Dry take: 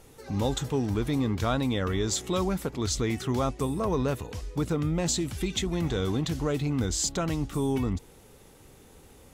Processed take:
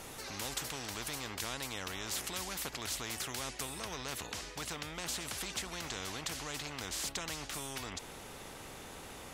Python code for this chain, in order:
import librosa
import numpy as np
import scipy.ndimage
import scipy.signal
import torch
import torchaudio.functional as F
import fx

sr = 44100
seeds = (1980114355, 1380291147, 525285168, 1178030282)

y = fx.high_shelf(x, sr, hz=8000.0, db=fx.steps((0.0, -4.0), (3.61, -10.0)))
y = fx.spectral_comp(y, sr, ratio=4.0)
y = y * librosa.db_to_amplitude(-3.5)